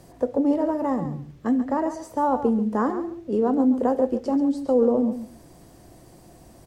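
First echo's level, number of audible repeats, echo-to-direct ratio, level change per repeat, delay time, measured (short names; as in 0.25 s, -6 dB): -11.0 dB, 2, -11.0 dB, -15.5 dB, 0.137 s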